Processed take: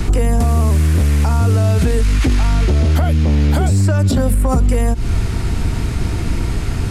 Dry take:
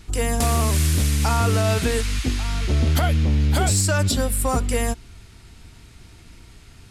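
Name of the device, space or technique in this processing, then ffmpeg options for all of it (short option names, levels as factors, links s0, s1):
mastering chain: -filter_complex "[0:a]asettb=1/sr,asplit=3[s0][s1][s2];[s0]atrim=end=3.044[s3];[s1]atrim=start=3.04:end=4.34,asetpts=PTS-STARTPTS,afade=t=in:d=0.004:c=qsin,afade=t=out:st=1.296:d=0.004:c=qsin,highpass=f=140:p=1[s4];[s2]atrim=start=4.336[s5];[s3][s4]acrossfade=d=0.004:c1=hsin:c2=qsin[s6];[s6][s5]acrossfade=d=0.004:c1=qsin:c2=hsin,equalizer=f=3500:t=o:w=0.77:g=-2.5,acrossover=split=180|370|2900[s7][s8][s9][s10];[s7]acompressor=threshold=0.0447:ratio=4[s11];[s8]acompressor=threshold=0.00794:ratio=4[s12];[s9]acompressor=threshold=0.0126:ratio=4[s13];[s10]acompressor=threshold=0.01:ratio=4[s14];[s11][s12][s13][s14]amix=inputs=4:normalize=0,acompressor=threshold=0.0316:ratio=3,tiltshelf=f=1400:g=5,asoftclip=type=hard:threshold=0.0891,alimiter=level_in=29.9:limit=0.891:release=50:level=0:latency=1,volume=0.473"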